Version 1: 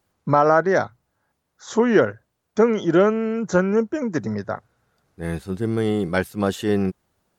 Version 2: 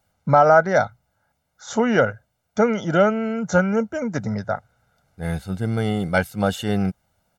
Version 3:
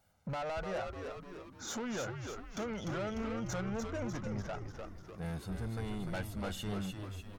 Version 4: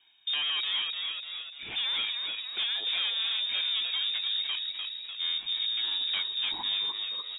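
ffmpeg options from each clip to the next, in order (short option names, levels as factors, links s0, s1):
-af "aecho=1:1:1.4:0.67"
-filter_complex "[0:a]acompressor=threshold=0.0251:ratio=2.5,asoftclip=type=tanh:threshold=0.0251,asplit=8[s0][s1][s2][s3][s4][s5][s6][s7];[s1]adelay=298,afreqshift=-100,volume=0.562[s8];[s2]adelay=596,afreqshift=-200,volume=0.309[s9];[s3]adelay=894,afreqshift=-300,volume=0.17[s10];[s4]adelay=1192,afreqshift=-400,volume=0.0933[s11];[s5]adelay=1490,afreqshift=-500,volume=0.0513[s12];[s6]adelay=1788,afreqshift=-600,volume=0.0282[s13];[s7]adelay=2086,afreqshift=-700,volume=0.0155[s14];[s0][s8][s9][s10][s11][s12][s13][s14]amix=inputs=8:normalize=0,volume=0.708"
-af "asoftclip=type=tanh:threshold=0.02,lowpass=f=3200:t=q:w=0.5098,lowpass=f=3200:t=q:w=0.6013,lowpass=f=3200:t=q:w=0.9,lowpass=f=3200:t=q:w=2.563,afreqshift=-3800,bandreject=f=46.4:t=h:w=4,bandreject=f=92.8:t=h:w=4,bandreject=f=139.2:t=h:w=4,bandreject=f=185.6:t=h:w=4,bandreject=f=232:t=h:w=4,bandreject=f=278.4:t=h:w=4,volume=2.82"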